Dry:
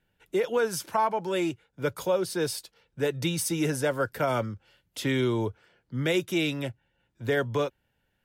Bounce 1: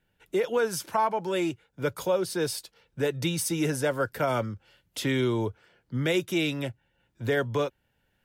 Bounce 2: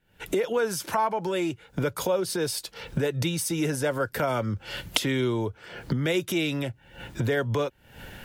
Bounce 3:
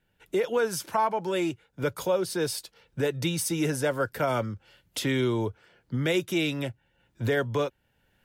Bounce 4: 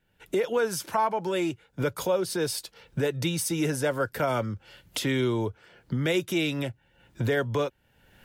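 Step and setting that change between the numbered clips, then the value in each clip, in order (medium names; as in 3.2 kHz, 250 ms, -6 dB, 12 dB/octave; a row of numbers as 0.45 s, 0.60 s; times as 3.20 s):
recorder AGC, rising by: 5.5 dB/s, 87 dB/s, 14 dB/s, 35 dB/s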